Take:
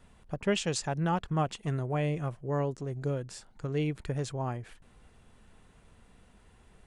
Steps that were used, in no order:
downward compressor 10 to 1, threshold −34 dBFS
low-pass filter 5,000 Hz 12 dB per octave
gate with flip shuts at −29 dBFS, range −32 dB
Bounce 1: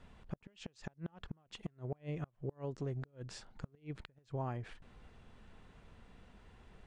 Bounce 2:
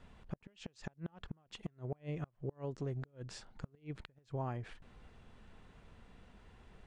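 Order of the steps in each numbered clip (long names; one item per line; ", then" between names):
downward compressor, then low-pass filter, then gate with flip
low-pass filter, then downward compressor, then gate with flip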